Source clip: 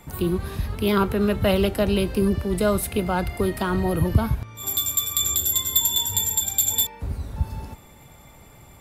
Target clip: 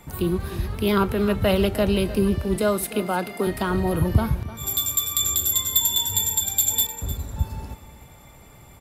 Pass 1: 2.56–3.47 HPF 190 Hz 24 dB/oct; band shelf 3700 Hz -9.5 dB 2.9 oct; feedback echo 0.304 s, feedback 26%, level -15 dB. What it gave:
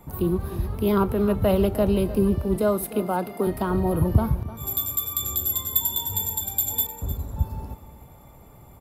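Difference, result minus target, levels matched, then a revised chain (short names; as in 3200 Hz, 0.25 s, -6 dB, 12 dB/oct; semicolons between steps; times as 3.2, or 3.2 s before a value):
4000 Hz band -8.0 dB
2.56–3.47 HPF 190 Hz 24 dB/oct; feedback echo 0.304 s, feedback 26%, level -15 dB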